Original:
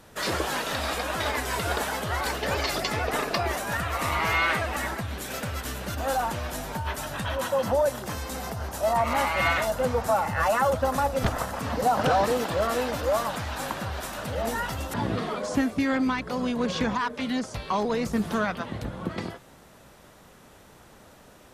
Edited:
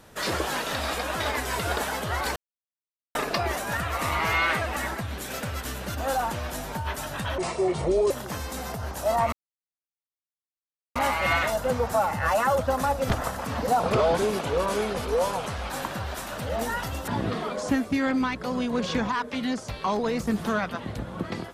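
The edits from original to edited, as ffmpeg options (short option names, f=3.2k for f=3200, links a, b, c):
-filter_complex "[0:a]asplit=8[a][b][c][d][e][f][g][h];[a]atrim=end=2.36,asetpts=PTS-STARTPTS,afade=t=out:st=2.356:d=0.004:c=hsin[i];[b]atrim=start=2.36:end=3.15,asetpts=PTS-STARTPTS,volume=0[j];[c]atrim=start=3.15:end=7.384,asetpts=PTS-STARTPTS,afade=t=in:d=0.004:c=hsin[k];[d]atrim=start=7.38:end=7.88,asetpts=PTS-STARTPTS,asetrate=30429,aresample=44100[l];[e]atrim=start=7.876:end=9.1,asetpts=PTS-STARTPTS,afade=t=out:st=1.22:d=0.004:c=hsin,apad=pad_dur=1.63[m];[f]atrim=start=9.1:end=11.944,asetpts=PTS-STARTPTS,afade=t=in:d=0.004:c=hsin[n];[g]atrim=start=11.94:end=13.56,asetpts=PTS-STARTPTS,asetrate=37485,aresample=44100,atrim=end_sample=84049,asetpts=PTS-STARTPTS[o];[h]atrim=start=13.556[p];[i][j][k]concat=n=3:v=0:a=1[q];[q][l]acrossfade=d=0.004:c1=hsin:c2=hsin[r];[m][n]concat=n=2:v=0:a=1[s];[r][s]acrossfade=d=0.004:c1=hsin:c2=hsin[t];[t][o]acrossfade=d=0.004:c1=hsin:c2=hsin[u];[u][p]acrossfade=d=0.004:c1=hsin:c2=hsin"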